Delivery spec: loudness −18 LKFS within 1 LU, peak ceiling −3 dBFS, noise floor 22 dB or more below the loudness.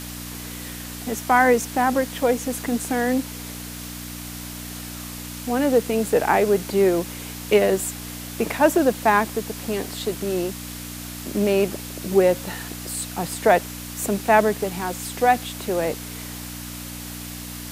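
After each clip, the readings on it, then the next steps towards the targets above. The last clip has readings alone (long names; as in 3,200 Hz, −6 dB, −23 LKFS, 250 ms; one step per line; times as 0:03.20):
mains hum 60 Hz; hum harmonics up to 300 Hz; level of the hum −35 dBFS; background noise floor −35 dBFS; target noise floor −45 dBFS; integrated loudness −23.0 LKFS; sample peak −2.5 dBFS; target loudness −18.0 LKFS
→ hum removal 60 Hz, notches 5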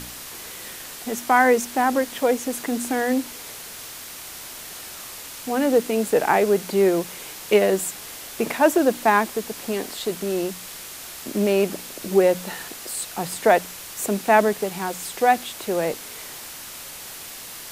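mains hum none found; background noise floor −38 dBFS; target noise floor −44 dBFS
→ broadband denoise 6 dB, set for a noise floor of −38 dBFS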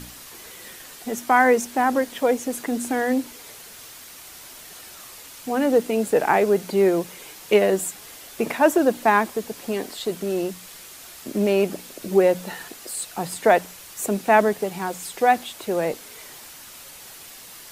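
background noise floor −43 dBFS; target noise floor −44 dBFS
→ broadband denoise 6 dB, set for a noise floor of −43 dBFS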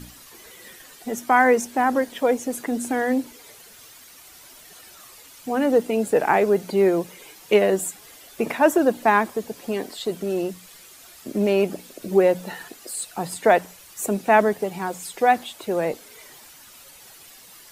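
background noise floor −47 dBFS; integrated loudness −22.0 LKFS; sample peak −2.5 dBFS; target loudness −18.0 LKFS
→ level +4 dB
brickwall limiter −3 dBFS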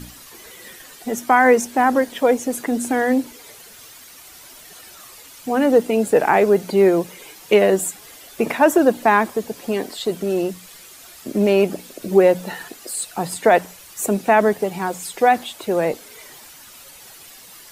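integrated loudness −18.5 LKFS; sample peak −3.0 dBFS; background noise floor −43 dBFS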